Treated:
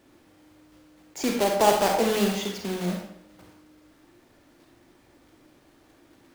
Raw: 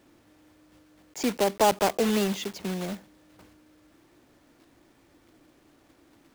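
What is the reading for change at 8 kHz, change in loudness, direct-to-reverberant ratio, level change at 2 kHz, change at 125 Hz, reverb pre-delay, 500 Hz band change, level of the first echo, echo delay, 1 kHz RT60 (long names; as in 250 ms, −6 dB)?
+2.0 dB, +2.0 dB, 1.0 dB, +2.5 dB, +2.0 dB, 33 ms, +2.5 dB, no echo audible, no echo audible, 0.70 s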